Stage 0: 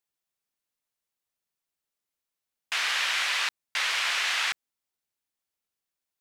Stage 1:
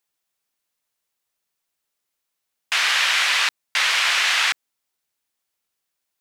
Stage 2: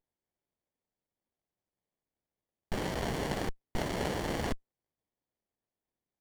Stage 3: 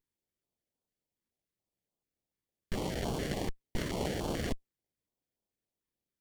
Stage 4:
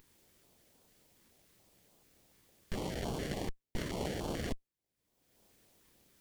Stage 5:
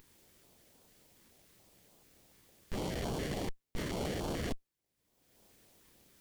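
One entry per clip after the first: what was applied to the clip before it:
low shelf 370 Hz -4.5 dB; gain +8 dB
running maximum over 33 samples; gain -9 dB
stepped notch 6.9 Hz 680–1900 Hz
upward compressor, threshold -42 dBFS; gain -3 dB
soft clip -32 dBFS, distortion -14 dB; gain +3 dB

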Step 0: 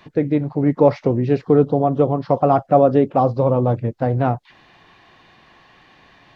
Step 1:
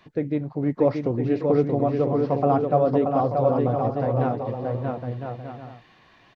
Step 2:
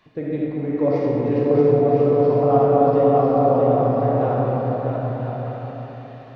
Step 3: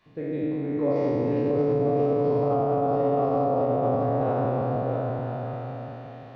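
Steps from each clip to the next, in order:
notch 860 Hz, Q 25; on a send: bouncing-ball echo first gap 0.63 s, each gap 0.6×, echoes 5; on the sum: gain -7 dB
reverb RT60 3.5 s, pre-delay 5 ms, DRR -5.5 dB; gain -3.5 dB
spectral trails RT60 2.30 s; limiter -8.5 dBFS, peak gain reduction 6.5 dB; gain -7 dB

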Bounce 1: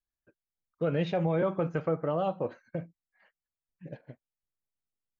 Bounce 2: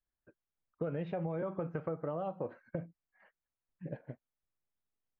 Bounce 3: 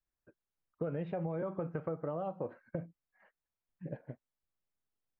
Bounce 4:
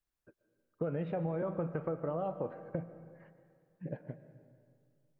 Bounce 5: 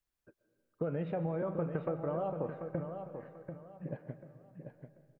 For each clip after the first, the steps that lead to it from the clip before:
compressor 6:1, threshold -36 dBFS, peak gain reduction 11.5 dB; LPF 1900 Hz 12 dB/oct; gain +2 dB
high shelf 3400 Hz -8 dB
digital reverb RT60 2.2 s, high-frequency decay 0.65×, pre-delay 85 ms, DRR 12 dB; gain +1.5 dB
feedback echo 0.739 s, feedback 28%, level -8 dB

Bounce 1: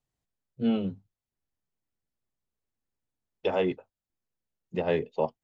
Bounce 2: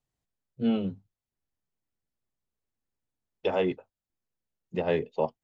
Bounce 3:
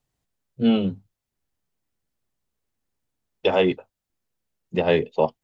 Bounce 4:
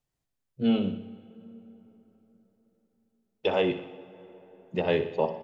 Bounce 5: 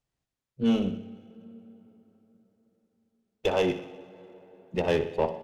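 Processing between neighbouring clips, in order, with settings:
nothing audible
dynamic EQ 3400 Hz, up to +5 dB, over -51 dBFS, Q 1.4; gain +7 dB
on a send: feedback echo 61 ms, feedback 56%, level -11.5 dB; on the sum: plate-style reverb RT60 4.3 s, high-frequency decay 0.55×, DRR 16.5 dB; gain -6 dB
added harmonics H 6 -25 dB, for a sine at -11.5 dBFS; running maximum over 3 samples

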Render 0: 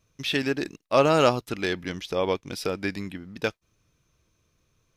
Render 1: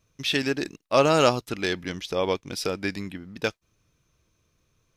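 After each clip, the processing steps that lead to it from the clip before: dynamic EQ 6400 Hz, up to +5 dB, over -42 dBFS, Q 0.74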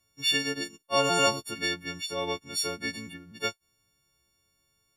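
frequency quantiser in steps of 4 st; gain -7.5 dB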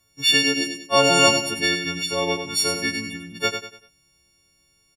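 feedback echo 97 ms, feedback 36%, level -7.5 dB; gain +7.5 dB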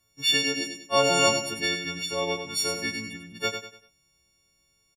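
doubler 27 ms -12 dB; gain -5.5 dB

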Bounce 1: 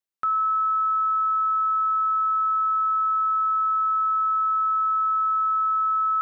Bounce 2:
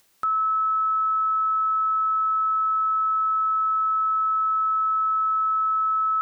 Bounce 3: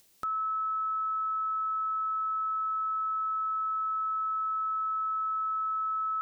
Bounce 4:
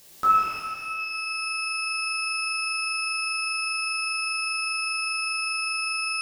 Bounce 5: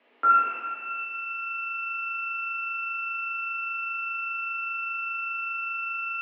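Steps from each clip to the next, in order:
upward compressor, threshold -40 dBFS
bell 1300 Hz -8.5 dB 1.7 oct
shimmer reverb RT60 2.1 s, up +12 st, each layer -8 dB, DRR -10 dB; gain +5.5 dB
mistuned SSB +72 Hz 170–2600 Hz

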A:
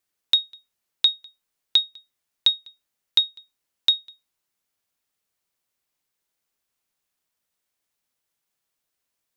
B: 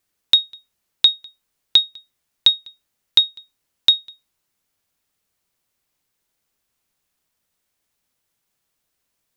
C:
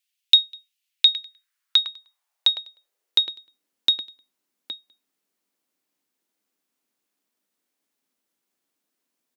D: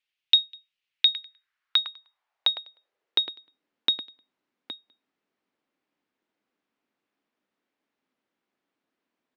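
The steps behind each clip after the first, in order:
low shelf 240 Hz +6 dB; gain +5 dB
outdoor echo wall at 140 m, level -7 dB; high-pass sweep 2800 Hz -> 260 Hz, 0.85–3.59; gain -5.5 dB
LPF 2600 Hz 12 dB/oct; gain +3 dB

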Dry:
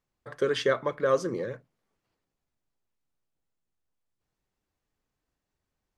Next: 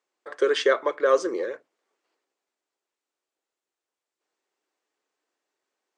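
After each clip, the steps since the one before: Chebyshev band-pass 350–8200 Hz, order 3; gain +5 dB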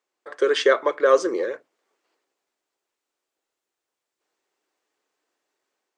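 AGC gain up to 4 dB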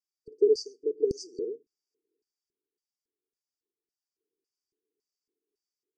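LFO band-pass square 1.8 Hz 540–4100 Hz; brick-wall FIR band-stop 470–4500 Hz; low shelf 300 Hz +10.5 dB

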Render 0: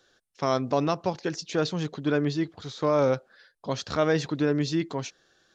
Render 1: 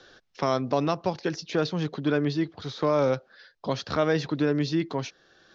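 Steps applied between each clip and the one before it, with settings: steep low-pass 5900 Hz 36 dB/oct; three-band squash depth 40%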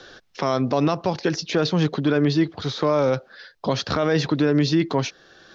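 limiter -19 dBFS, peak gain reduction 8.5 dB; gain +8.5 dB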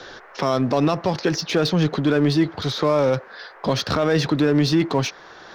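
band noise 390–1800 Hz -50 dBFS; in parallel at -4 dB: overloaded stage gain 29 dB

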